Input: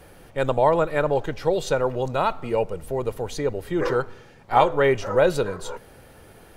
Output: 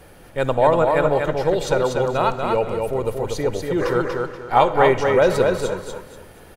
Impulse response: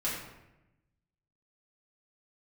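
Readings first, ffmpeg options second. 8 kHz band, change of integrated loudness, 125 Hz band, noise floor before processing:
+3.5 dB, +3.5 dB, +3.5 dB, -49 dBFS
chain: -filter_complex "[0:a]aecho=1:1:240|480|720|960:0.631|0.177|0.0495|0.0139,asplit=2[a][b];[1:a]atrim=start_sample=2205,adelay=54[c];[b][c]afir=irnorm=-1:irlink=0,volume=-20.5dB[d];[a][d]amix=inputs=2:normalize=0,volume=2dB"

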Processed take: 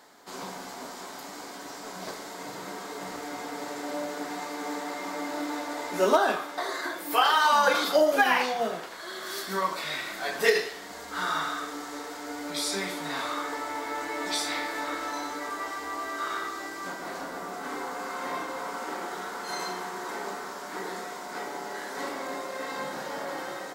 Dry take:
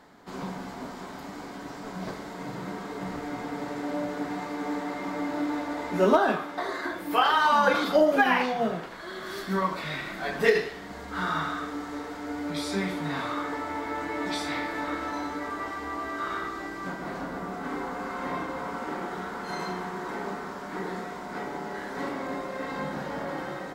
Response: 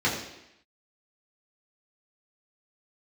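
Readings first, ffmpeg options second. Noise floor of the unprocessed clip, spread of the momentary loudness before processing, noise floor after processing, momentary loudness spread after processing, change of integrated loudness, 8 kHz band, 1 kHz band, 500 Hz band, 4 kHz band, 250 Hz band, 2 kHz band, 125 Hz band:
-40 dBFS, 14 LU, -41 dBFS, 15 LU, -0.5 dB, +9.0 dB, 0.0 dB, -1.0 dB, +4.0 dB, -6.0 dB, +0.5 dB, -11.0 dB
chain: -af "bass=f=250:g=-14,treble=f=4k:g=10"

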